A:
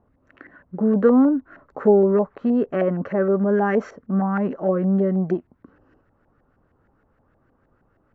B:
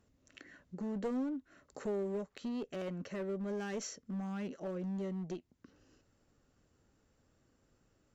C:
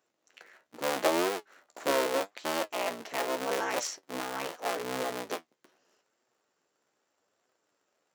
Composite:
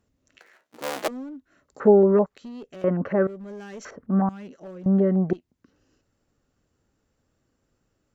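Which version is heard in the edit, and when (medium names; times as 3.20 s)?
B
0.39–1.08 s: from C
1.80–2.26 s: from A
2.84–3.27 s: from A
3.85–4.29 s: from A
4.86–5.33 s: from A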